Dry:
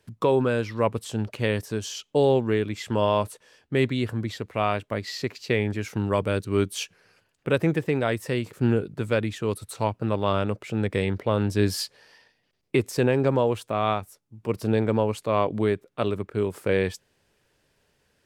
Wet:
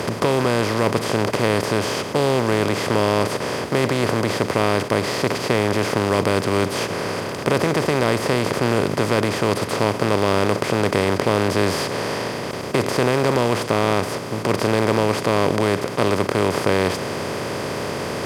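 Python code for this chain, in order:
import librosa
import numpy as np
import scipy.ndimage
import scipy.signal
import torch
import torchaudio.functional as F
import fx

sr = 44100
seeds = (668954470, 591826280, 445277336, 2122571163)

y = fx.bin_compress(x, sr, power=0.2)
y = F.gain(torch.from_numpy(y), -3.5).numpy()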